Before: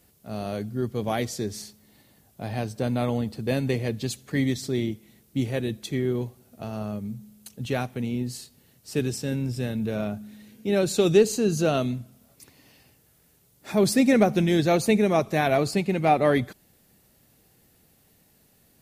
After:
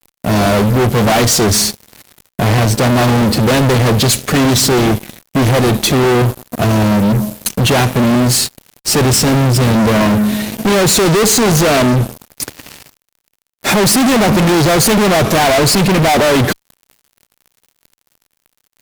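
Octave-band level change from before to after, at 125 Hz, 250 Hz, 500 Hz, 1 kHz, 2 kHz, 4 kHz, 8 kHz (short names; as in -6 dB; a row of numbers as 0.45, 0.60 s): +16.0, +12.5, +11.0, +14.5, +16.0, +20.0, +21.5 dB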